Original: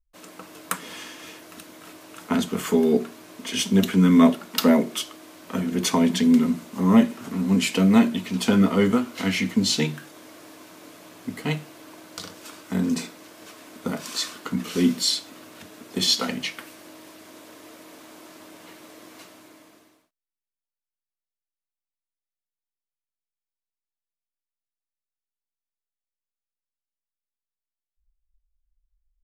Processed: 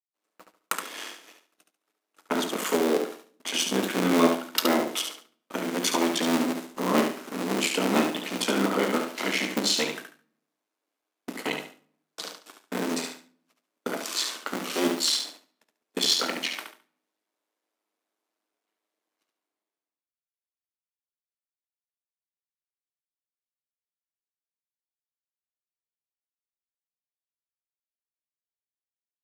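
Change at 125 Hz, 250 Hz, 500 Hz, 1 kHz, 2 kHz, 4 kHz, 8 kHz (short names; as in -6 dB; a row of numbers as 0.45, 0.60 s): -13.5, -8.5, -1.5, +1.0, +1.0, -0.5, 0.0 dB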